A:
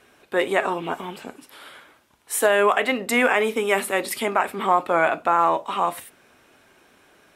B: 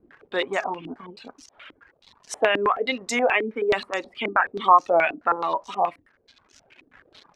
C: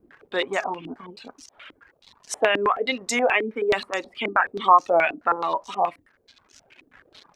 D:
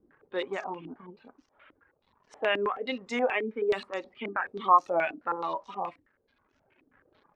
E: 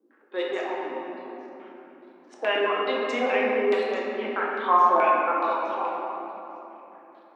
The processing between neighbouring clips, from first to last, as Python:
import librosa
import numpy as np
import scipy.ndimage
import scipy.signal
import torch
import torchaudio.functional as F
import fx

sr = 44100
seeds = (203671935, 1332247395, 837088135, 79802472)

y1 = fx.dmg_crackle(x, sr, seeds[0], per_s=310.0, level_db=-31.0)
y1 = fx.dereverb_blind(y1, sr, rt60_s=1.4)
y1 = fx.filter_held_lowpass(y1, sr, hz=9.4, low_hz=300.0, high_hz=6100.0)
y1 = F.gain(torch.from_numpy(y1), -4.5).numpy()
y2 = fx.high_shelf(y1, sr, hz=6400.0, db=6.0)
y3 = fx.notch(y2, sr, hz=690.0, q=14.0)
y3 = fx.env_lowpass(y3, sr, base_hz=1500.0, full_db=-17.0)
y3 = fx.hpss(y3, sr, part='percussive', gain_db=-7)
y3 = F.gain(torch.from_numpy(y3), -4.0).numpy()
y4 = scipy.signal.sosfilt(scipy.signal.butter(8, 230.0, 'highpass', fs=sr, output='sos'), y3)
y4 = fx.room_shoebox(y4, sr, seeds[1], volume_m3=210.0, walls='hard', distance_m=0.73)